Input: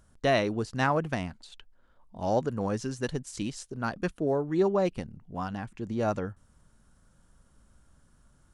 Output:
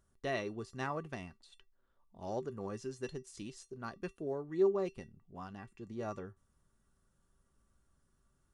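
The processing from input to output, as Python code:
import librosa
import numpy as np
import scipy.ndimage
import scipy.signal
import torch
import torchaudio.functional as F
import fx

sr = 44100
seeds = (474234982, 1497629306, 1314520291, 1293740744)

y = fx.comb_fb(x, sr, f0_hz=390.0, decay_s=0.16, harmonics='odd', damping=0.0, mix_pct=80)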